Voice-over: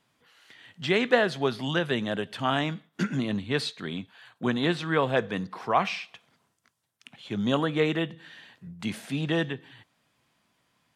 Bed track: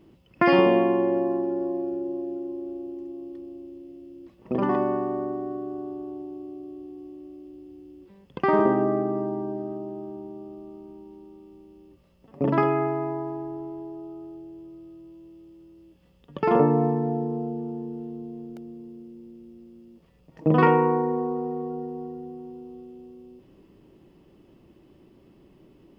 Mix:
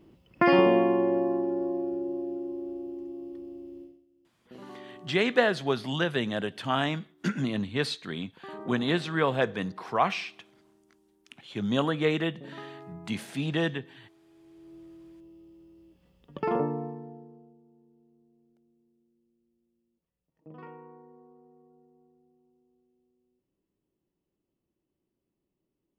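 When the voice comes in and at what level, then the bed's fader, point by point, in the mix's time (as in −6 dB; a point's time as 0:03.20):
4.25 s, −1.0 dB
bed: 0:03.83 −2 dB
0:04.06 −22 dB
0:14.22 −22 dB
0:14.75 −4 dB
0:16.36 −4 dB
0:17.62 −28.5 dB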